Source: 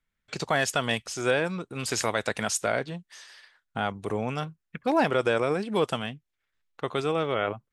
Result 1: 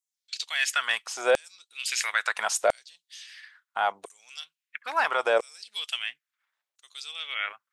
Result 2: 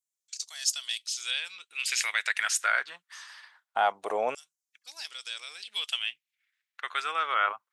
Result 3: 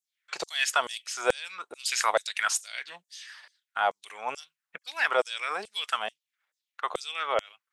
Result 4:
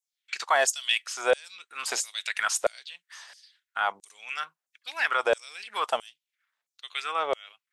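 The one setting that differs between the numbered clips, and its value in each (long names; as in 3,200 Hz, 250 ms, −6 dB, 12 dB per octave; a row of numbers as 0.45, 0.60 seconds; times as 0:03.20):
auto-filter high-pass, speed: 0.74, 0.23, 2.3, 1.5 Hertz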